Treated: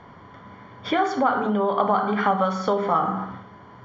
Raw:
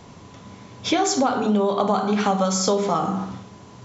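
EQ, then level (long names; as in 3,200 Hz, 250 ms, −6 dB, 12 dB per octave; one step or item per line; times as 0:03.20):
Savitzky-Golay smoothing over 41 samples
high-frequency loss of the air 190 metres
tilt shelving filter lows −9.5 dB, about 1,200 Hz
+5.0 dB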